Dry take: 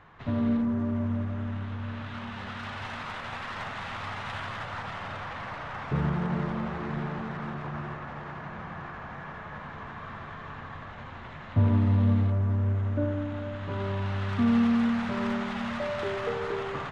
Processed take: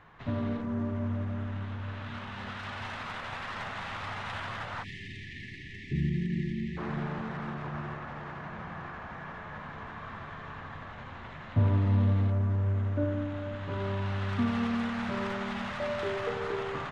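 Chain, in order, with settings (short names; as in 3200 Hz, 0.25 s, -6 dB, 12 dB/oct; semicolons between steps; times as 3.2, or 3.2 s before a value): de-hum 46.45 Hz, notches 31; spectral delete 4.83–6.78, 430–1700 Hz; gain -1 dB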